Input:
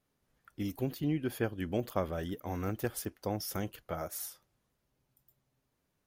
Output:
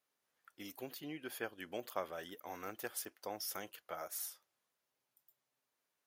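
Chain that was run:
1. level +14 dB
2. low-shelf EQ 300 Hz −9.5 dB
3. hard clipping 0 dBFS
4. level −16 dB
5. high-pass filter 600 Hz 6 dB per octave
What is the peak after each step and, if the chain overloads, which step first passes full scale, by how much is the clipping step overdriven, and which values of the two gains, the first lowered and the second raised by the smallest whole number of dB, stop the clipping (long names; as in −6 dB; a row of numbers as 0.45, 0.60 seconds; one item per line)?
−2.0, −4.0, −4.0, −20.0, −23.0 dBFS
no step passes full scale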